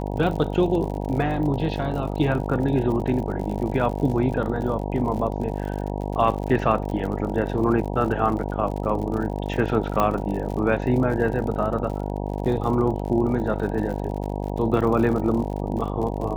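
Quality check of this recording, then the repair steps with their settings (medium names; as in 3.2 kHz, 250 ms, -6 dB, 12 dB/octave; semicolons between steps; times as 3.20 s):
buzz 50 Hz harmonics 19 -28 dBFS
crackle 59 per s -31 dBFS
10.00 s: pop -9 dBFS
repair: de-click; de-hum 50 Hz, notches 19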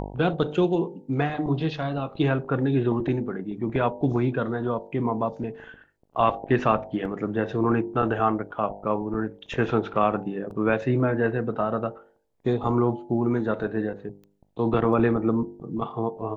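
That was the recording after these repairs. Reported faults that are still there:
nothing left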